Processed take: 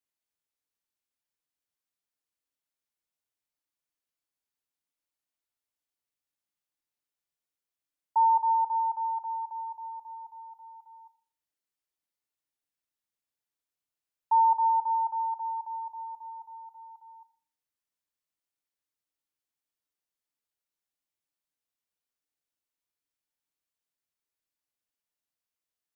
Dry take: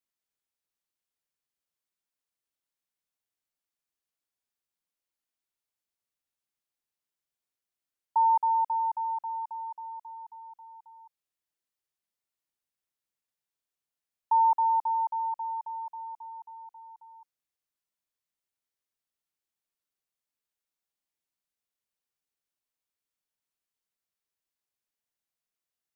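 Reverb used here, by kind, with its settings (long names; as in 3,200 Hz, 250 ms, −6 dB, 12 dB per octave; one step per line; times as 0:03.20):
feedback delay network reverb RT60 0.45 s, low-frequency decay 1.25×, high-frequency decay 0.9×, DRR 8.5 dB
level −2.5 dB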